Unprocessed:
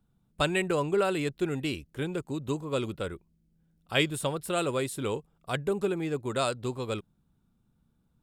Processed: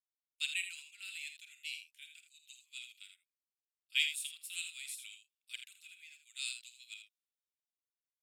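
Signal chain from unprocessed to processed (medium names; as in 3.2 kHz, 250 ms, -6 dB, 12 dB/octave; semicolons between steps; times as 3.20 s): elliptic high-pass 2.4 kHz, stop band 70 dB; loudspeakers at several distances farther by 17 m -11 dB, 28 m -8 dB; three bands expanded up and down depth 40%; trim -5 dB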